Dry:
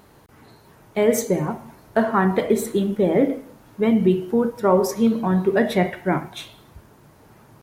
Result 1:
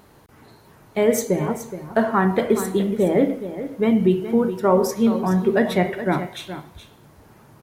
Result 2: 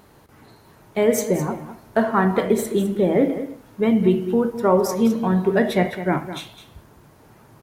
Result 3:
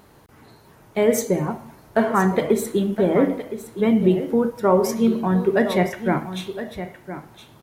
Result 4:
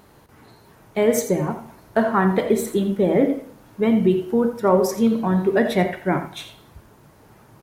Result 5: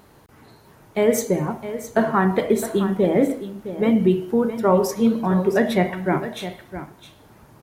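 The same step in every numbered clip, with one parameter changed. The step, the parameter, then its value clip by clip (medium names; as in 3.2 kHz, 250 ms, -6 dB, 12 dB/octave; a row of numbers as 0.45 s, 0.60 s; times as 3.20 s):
delay, time: 421 ms, 208 ms, 1015 ms, 85 ms, 662 ms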